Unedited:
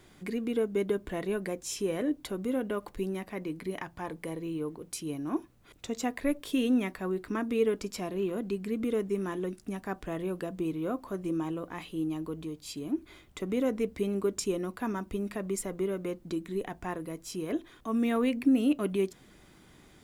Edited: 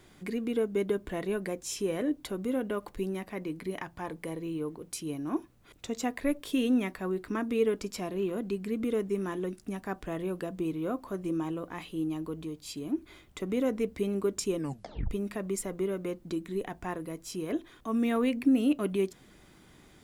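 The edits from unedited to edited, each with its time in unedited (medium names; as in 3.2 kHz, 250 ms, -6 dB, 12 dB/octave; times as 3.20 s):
14.56 s: tape stop 0.55 s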